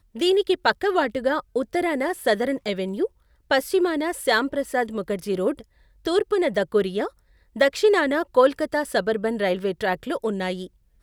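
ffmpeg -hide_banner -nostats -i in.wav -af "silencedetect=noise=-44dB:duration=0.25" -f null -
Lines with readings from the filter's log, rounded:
silence_start: 3.07
silence_end: 3.50 | silence_duration: 0.43
silence_start: 5.64
silence_end: 6.05 | silence_duration: 0.41
silence_start: 7.09
silence_end: 7.56 | silence_duration: 0.46
silence_start: 10.67
silence_end: 11.02 | silence_duration: 0.35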